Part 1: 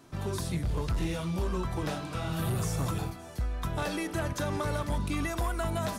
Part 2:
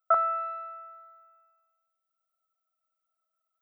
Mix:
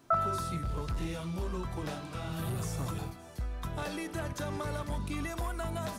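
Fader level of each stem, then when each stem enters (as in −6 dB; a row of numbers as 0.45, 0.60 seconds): −4.5, −5.0 decibels; 0.00, 0.00 seconds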